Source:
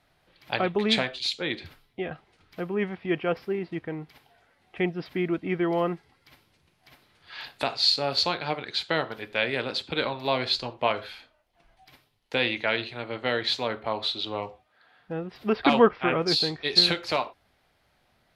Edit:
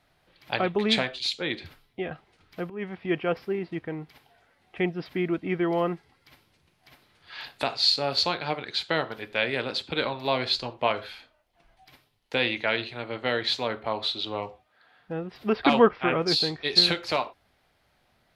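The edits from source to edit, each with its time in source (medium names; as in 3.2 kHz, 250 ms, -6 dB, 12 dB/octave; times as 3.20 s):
2.70–3.00 s: fade in, from -15.5 dB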